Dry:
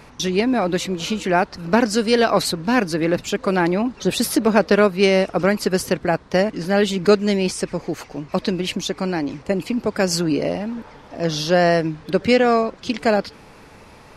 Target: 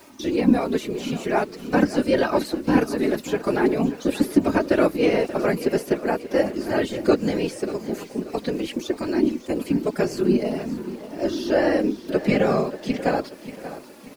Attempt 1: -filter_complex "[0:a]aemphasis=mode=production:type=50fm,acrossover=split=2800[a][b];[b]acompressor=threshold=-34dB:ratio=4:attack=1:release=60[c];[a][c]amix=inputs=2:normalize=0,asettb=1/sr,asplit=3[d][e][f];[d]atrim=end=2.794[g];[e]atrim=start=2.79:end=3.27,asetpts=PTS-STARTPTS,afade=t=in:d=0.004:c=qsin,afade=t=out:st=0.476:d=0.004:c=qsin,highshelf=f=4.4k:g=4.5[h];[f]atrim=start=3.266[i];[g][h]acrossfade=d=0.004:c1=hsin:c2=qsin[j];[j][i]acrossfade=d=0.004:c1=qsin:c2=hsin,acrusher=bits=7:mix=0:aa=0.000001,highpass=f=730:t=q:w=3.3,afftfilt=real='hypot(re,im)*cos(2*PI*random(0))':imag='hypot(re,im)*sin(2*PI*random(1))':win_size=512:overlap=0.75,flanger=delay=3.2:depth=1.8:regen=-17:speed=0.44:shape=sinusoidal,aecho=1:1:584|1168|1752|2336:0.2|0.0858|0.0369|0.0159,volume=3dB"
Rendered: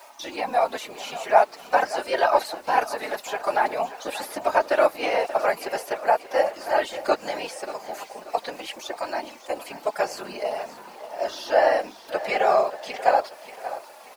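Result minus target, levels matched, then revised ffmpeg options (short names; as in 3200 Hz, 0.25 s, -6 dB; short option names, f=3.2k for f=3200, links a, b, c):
250 Hz band -17.0 dB
-filter_complex "[0:a]aemphasis=mode=production:type=50fm,acrossover=split=2800[a][b];[b]acompressor=threshold=-34dB:ratio=4:attack=1:release=60[c];[a][c]amix=inputs=2:normalize=0,asettb=1/sr,asplit=3[d][e][f];[d]atrim=end=2.794[g];[e]atrim=start=2.79:end=3.27,asetpts=PTS-STARTPTS,afade=t=in:d=0.004:c=qsin,afade=t=out:st=0.476:d=0.004:c=qsin,highshelf=f=4.4k:g=4.5[h];[f]atrim=start=3.266[i];[g][h]acrossfade=d=0.004:c1=hsin:c2=qsin[j];[j][i]acrossfade=d=0.004:c1=qsin:c2=hsin,acrusher=bits=7:mix=0:aa=0.000001,highpass=f=280:t=q:w=3.3,afftfilt=real='hypot(re,im)*cos(2*PI*random(0))':imag='hypot(re,im)*sin(2*PI*random(1))':win_size=512:overlap=0.75,flanger=delay=3.2:depth=1.8:regen=-17:speed=0.44:shape=sinusoidal,aecho=1:1:584|1168|1752|2336:0.2|0.0858|0.0369|0.0159,volume=3dB"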